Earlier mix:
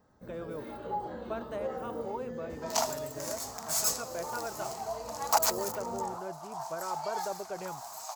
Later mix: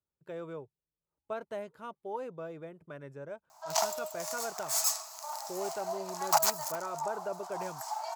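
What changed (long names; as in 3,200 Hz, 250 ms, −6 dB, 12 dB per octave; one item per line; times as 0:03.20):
first sound: muted
second sound: entry +1.00 s
master: add high-pass filter 69 Hz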